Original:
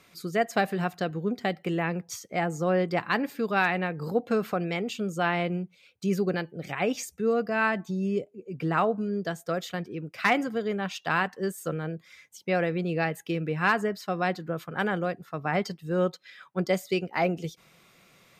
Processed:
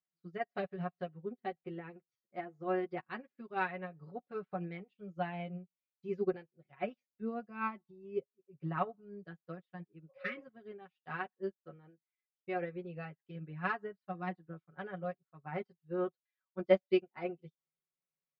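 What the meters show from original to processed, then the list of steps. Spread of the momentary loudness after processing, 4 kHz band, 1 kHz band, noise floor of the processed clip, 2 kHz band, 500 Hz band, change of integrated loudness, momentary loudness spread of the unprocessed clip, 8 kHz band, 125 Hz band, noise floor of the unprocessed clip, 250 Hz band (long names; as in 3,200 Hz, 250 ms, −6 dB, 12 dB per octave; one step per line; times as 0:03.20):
14 LU, −17.0 dB, −11.5 dB, below −85 dBFS, −14.5 dB, −9.5 dB, −11.0 dB, 8 LU, below −35 dB, −13.5 dB, −60 dBFS, −12.5 dB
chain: healed spectral selection 0:10.12–0:10.41, 470–1,200 Hz after
comb filter 5.4 ms, depth 58%
flanger 0.21 Hz, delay 6.4 ms, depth 2.3 ms, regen −9%
high-frequency loss of the air 320 metres
expander for the loud parts 2.5 to 1, over −48 dBFS
level +1 dB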